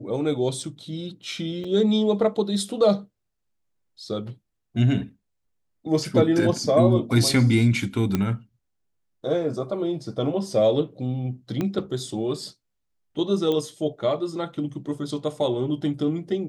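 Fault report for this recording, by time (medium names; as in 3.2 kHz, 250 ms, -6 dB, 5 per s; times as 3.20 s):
1.64 s: dropout 4.6 ms
8.15 s: pop -10 dBFS
11.61 s: pop -14 dBFS
13.52 s: pop -15 dBFS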